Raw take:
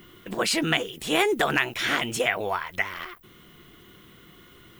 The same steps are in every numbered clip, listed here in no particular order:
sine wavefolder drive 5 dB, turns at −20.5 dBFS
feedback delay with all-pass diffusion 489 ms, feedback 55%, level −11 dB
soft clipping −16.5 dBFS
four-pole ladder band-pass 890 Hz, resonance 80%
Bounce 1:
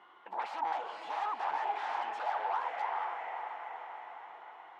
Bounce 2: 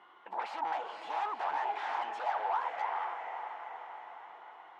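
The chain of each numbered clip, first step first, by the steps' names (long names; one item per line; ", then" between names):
feedback delay with all-pass diffusion, then sine wavefolder, then soft clipping, then four-pole ladder band-pass
soft clipping, then feedback delay with all-pass diffusion, then sine wavefolder, then four-pole ladder band-pass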